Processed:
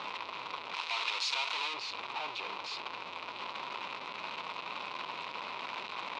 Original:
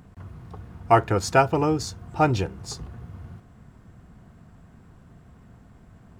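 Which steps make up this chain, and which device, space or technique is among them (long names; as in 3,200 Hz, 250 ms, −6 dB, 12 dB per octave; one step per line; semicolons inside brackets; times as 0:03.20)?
home computer beeper (sign of each sample alone; loudspeaker in its box 690–4,300 Hz, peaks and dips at 710 Hz −4 dB, 1,000 Hz +10 dB, 1,700 Hz −9 dB, 2,500 Hz +9 dB, 3,900 Hz +6 dB)
0:00.74–0:01.74: spectral tilt +4 dB per octave
level −8 dB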